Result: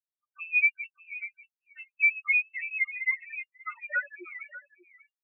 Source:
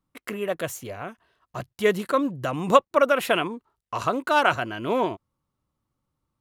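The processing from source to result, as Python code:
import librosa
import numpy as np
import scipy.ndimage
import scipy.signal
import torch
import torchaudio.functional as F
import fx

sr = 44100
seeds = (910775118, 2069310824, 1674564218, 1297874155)

p1 = fx.speed_glide(x, sr, from_pct=70, to_pct=175)
p2 = fx.rider(p1, sr, range_db=4, speed_s=0.5)
p3 = p1 + (p2 * 10.0 ** (-2.0 / 20.0))
p4 = fx.fuzz(p3, sr, gain_db=22.0, gate_db=-29.0)
p5 = fx.spec_topn(p4, sr, count=2)
p6 = fx.tremolo_shape(p5, sr, shape='triangle', hz=3.6, depth_pct=80)
p7 = p6 + fx.echo_single(p6, sr, ms=591, db=-10.5, dry=0)
p8 = fx.freq_invert(p7, sr, carrier_hz=2800)
y = fx.spectral_expand(p8, sr, expansion=1.5)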